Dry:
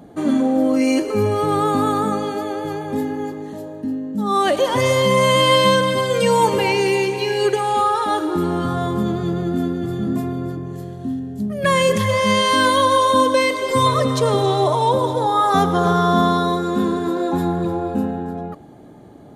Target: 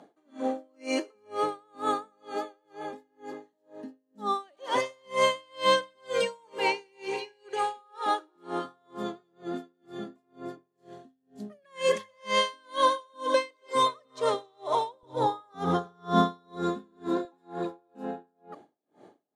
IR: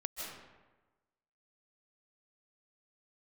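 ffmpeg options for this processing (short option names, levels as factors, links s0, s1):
-af "asetnsamples=n=441:p=0,asendcmd='15.03 highpass f 130;17.25 highpass f 350',highpass=400,lowpass=7600,aeval=exprs='val(0)*pow(10,-39*(0.5-0.5*cos(2*PI*2.1*n/s))/20)':c=same,volume=0.631"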